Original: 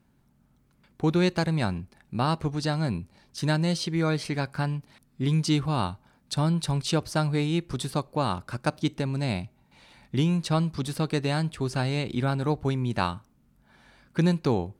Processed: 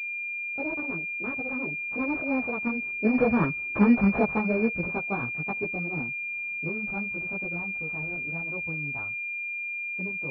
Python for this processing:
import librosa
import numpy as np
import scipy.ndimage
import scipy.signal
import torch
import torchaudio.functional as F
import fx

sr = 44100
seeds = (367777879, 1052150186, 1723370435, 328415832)

y = fx.speed_glide(x, sr, from_pct=165, to_pct=122)
y = fx.doppler_pass(y, sr, speed_mps=29, closest_m=17.0, pass_at_s=3.59)
y = fx.chorus_voices(y, sr, voices=2, hz=0.86, base_ms=16, depth_ms=4.4, mix_pct=55)
y = fx.pwm(y, sr, carrier_hz=2400.0)
y = y * librosa.db_to_amplitude(8.0)